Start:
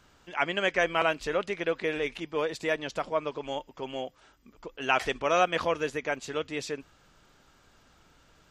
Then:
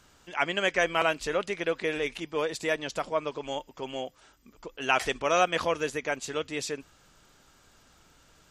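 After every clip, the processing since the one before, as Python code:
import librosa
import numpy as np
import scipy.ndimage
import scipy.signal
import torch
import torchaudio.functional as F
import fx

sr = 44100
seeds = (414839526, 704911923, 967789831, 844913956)

y = fx.peak_eq(x, sr, hz=9600.0, db=8.0, octaves=1.5)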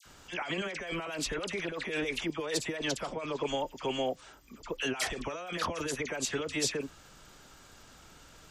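y = fx.over_compress(x, sr, threshold_db=-34.0, ratio=-1.0)
y = fx.dispersion(y, sr, late='lows', ms=56.0, hz=1600.0)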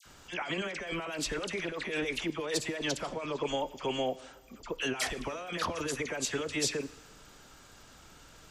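y = fx.rev_plate(x, sr, seeds[0], rt60_s=1.4, hf_ratio=0.95, predelay_ms=0, drr_db=17.0)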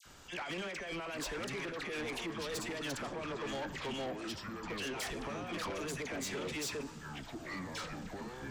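y = fx.echo_pitch(x, sr, ms=681, semitones=-6, count=3, db_per_echo=-6.0)
y = 10.0 ** (-34.0 / 20.0) * np.tanh(y / 10.0 ** (-34.0 / 20.0))
y = y * librosa.db_to_amplitude(-1.5)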